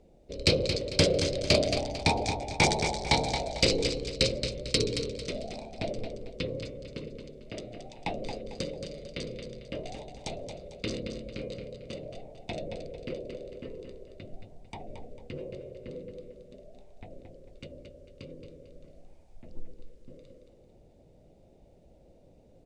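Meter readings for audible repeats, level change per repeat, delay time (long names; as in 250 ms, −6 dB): 3, −9.0 dB, 224 ms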